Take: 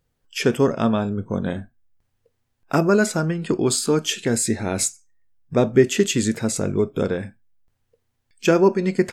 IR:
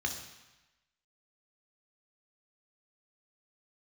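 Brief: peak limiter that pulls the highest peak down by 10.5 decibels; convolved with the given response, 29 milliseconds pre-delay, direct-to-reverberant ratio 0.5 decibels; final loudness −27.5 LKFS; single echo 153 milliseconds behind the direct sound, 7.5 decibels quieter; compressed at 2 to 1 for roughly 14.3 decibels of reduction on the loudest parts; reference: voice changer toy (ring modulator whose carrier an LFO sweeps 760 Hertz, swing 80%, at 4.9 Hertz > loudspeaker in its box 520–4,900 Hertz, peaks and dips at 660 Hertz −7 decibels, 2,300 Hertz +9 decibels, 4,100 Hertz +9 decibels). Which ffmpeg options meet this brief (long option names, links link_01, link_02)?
-filter_complex "[0:a]acompressor=threshold=-37dB:ratio=2,alimiter=level_in=3.5dB:limit=-24dB:level=0:latency=1,volume=-3.5dB,aecho=1:1:153:0.422,asplit=2[link_01][link_02];[1:a]atrim=start_sample=2205,adelay=29[link_03];[link_02][link_03]afir=irnorm=-1:irlink=0,volume=-4.5dB[link_04];[link_01][link_04]amix=inputs=2:normalize=0,aeval=exprs='val(0)*sin(2*PI*760*n/s+760*0.8/4.9*sin(2*PI*4.9*n/s))':channel_layout=same,highpass=520,equalizer=frequency=660:width_type=q:width=4:gain=-7,equalizer=frequency=2300:width_type=q:width=4:gain=9,equalizer=frequency=4100:width_type=q:width=4:gain=9,lowpass=frequency=4900:width=0.5412,lowpass=frequency=4900:width=1.3066,volume=9.5dB"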